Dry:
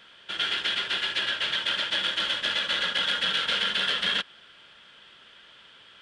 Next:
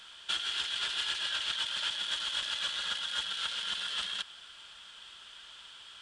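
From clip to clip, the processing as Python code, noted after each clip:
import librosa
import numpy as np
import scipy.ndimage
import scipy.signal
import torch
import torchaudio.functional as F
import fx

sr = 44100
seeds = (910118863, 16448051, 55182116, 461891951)

y = fx.graphic_eq(x, sr, hz=(125, 250, 500, 2000, 8000), db=(-11, -10, -11, -8, 8))
y = fx.over_compress(y, sr, threshold_db=-35.0, ratio=-1.0)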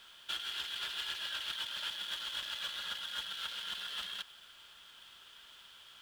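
y = scipy.signal.medfilt(x, 5)
y = fx.quant_dither(y, sr, seeds[0], bits=10, dither='none')
y = y * librosa.db_to_amplitude(-5.0)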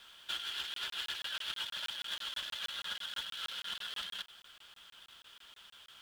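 y = fx.vibrato(x, sr, rate_hz=11.0, depth_cents=43.0)
y = fx.buffer_crackle(y, sr, first_s=0.74, period_s=0.16, block=1024, kind='zero')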